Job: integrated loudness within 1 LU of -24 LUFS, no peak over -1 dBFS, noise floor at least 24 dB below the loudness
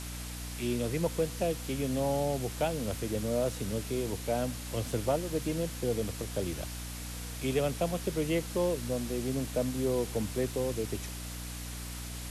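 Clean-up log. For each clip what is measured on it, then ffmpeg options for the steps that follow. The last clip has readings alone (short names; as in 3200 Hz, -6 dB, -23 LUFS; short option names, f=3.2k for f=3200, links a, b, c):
hum 60 Hz; harmonics up to 300 Hz; hum level -39 dBFS; noise floor -40 dBFS; noise floor target -57 dBFS; loudness -33.0 LUFS; peak -17.5 dBFS; loudness target -24.0 LUFS
-> -af "bandreject=f=60:t=h:w=4,bandreject=f=120:t=h:w=4,bandreject=f=180:t=h:w=4,bandreject=f=240:t=h:w=4,bandreject=f=300:t=h:w=4"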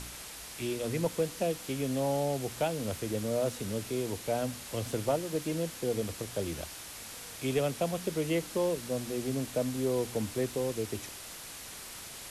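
hum none; noise floor -45 dBFS; noise floor target -58 dBFS
-> -af "afftdn=nr=13:nf=-45"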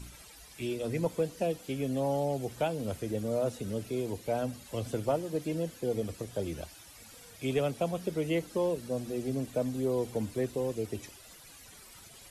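noise floor -53 dBFS; noise floor target -58 dBFS
-> -af "afftdn=nr=6:nf=-53"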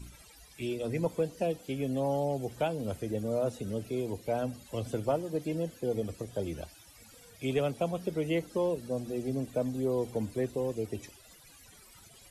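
noise floor -56 dBFS; noise floor target -58 dBFS
-> -af "afftdn=nr=6:nf=-56"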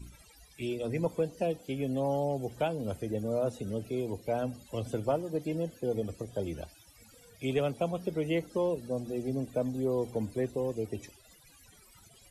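noise floor -59 dBFS; loudness -33.5 LUFS; peak -19.0 dBFS; loudness target -24.0 LUFS
-> -af "volume=9.5dB"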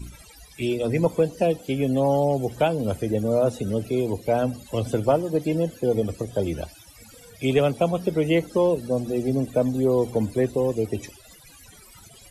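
loudness -24.0 LUFS; peak -9.5 dBFS; noise floor -49 dBFS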